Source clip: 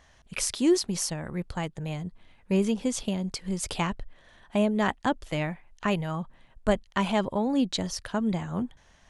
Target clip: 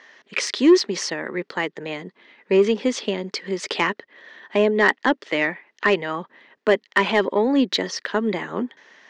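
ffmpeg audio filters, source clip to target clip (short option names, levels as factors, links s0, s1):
-af "highpass=f=260:w=0.5412,highpass=f=260:w=1.3066,equalizer=f=410:t=q:w=4:g=6,equalizer=f=720:t=q:w=4:g=-6,equalizer=f=1900:t=q:w=4:g=9,lowpass=f=5400:w=0.5412,lowpass=f=5400:w=1.3066,aeval=exprs='0.376*(cos(1*acos(clip(val(0)/0.376,-1,1)))-cos(1*PI/2))+0.0335*(cos(5*acos(clip(val(0)/0.376,-1,1)))-cos(5*PI/2))':c=same,volume=1.88"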